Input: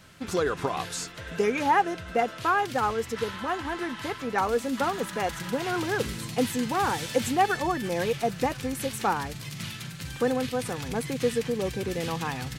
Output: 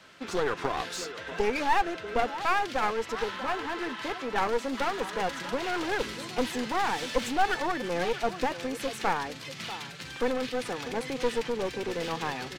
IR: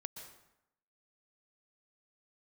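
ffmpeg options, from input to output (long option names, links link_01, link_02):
-filter_complex "[0:a]acrossover=split=250 6300:gain=0.158 1 0.224[link_01][link_02][link_03];[link_01][link_02][link_03]amix=inputs=3:normalize=0,asplit=2[link_04][link_05];[link_05]adelay=641.4,volume=-15dB,highshelf=frequency=4000:gain=-14.4[link_06];[link_04][link_06]amix=inputs=2:normalize=0,aeval=exprs='clip(val(0),-1,0.0211)':channel_layout=same,volume=1.5dB"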